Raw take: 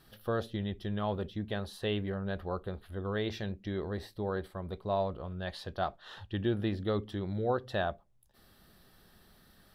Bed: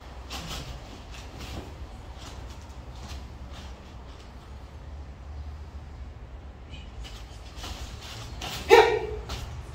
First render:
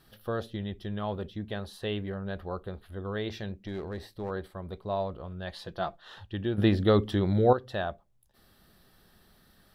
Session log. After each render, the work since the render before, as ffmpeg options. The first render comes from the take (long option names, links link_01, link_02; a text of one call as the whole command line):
ffmpeg -i in.wav -filter_complex "[0:a]asettb=1/sr,asplit=3[link_01][link_02][link_03];[link_01]atrim=end=3.664[link_04];[link_02]atrim=start=3.66:end=4.31,asetpts=PTS-STARTPTS,afade=type=in:duration=0.004:curve=qsin,afade=type=out:start_time=0.646:duration=0.004:curve=qsin,aeval=exprs='clip(val(0),-1,0.02)':channel_layout=same[link_05];[link_03]atrim=start=4.306[link_06];[link_04][link_05]acrossfade=duration=0.004:curve1=hsin:curve2=qsin[link_07];[link_07][link_06]acrossfade=duration=0.004:curve1=qsin:curve2=hsin,asettb=1/sr,asplit=3[link_08][link_09][link_10];[link_08]atrim=end=5.564[link_11];[link_09]atrim=start=5.56:end=6.01,asetpts=PTS-STARTPTS,afade=type=in:duration=0.004:curve=qsin,afade=type=out:start_time=0.446:duration=0.004:curve=qsin,aecho=1:1:5.9:0.5,atrim=end_sample=19845[link_12];[link_10]atrim=start=6.006[link_13];[link_11][link_12]acrossfade=duration=0.004:curve1=hsin:curve2=qsin[link_14];[link_14][link_13]acrossfade=duration=0.004:curve1=qsin:curve2=hsin,asplit=3[link_15][link_16][link_17];[link_15]atrim=end=6.582[link_18];[link_16]atrim=start=6.578:end=7.532,asetpts=PTS-STARTPTS,volume=9.5dB[link_19];[link_17]atrim=start=7.528[link_20];[link_18][link_19]acrossfade=duration=0.004:curve1=hsin:curve2=hsin[link_21];[link_21][link_20]acrossfade=duration=0.004:curve1=hsin:curve2=hsin" out.wav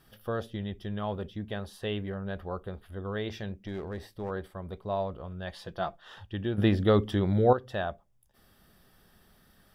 ffmpeg -i in.wav -af "equalizer=frequency=340:width_type=o:width=0.28:gain=-2,bandreject=frequency=4100:width=6.6" out.wav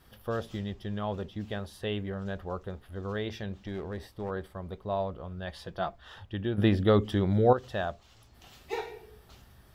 ffmpeg -i in.wav -i bed.wav -filter_complex "[1:a]volume=-19.5dB[link_01];[0:a][link_01]amix=inputs=2:normalize=0" out.wav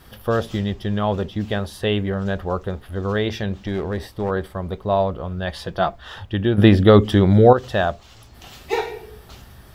ffmpeg -i in.wav -af "volume=12dB,alimiter=limit=-1dB:level=0:latency=1" out.wav